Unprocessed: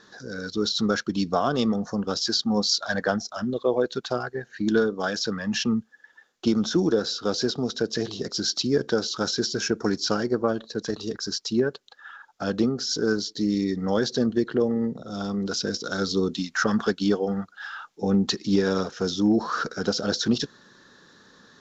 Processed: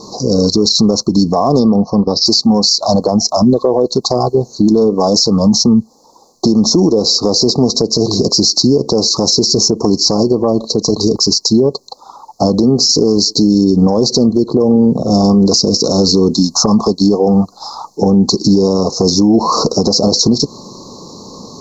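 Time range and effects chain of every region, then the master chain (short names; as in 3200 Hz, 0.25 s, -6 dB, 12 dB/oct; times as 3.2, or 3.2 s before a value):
1.59–2.26 steep low-pass 5200 Hz + upward expander, over -40 dBFS
whole clip: Chebyshev band-stop 1100–4200 Hz, order 5; compressor, threshold -28 dBFS; maximiser +25.5 dB; gain -1 dB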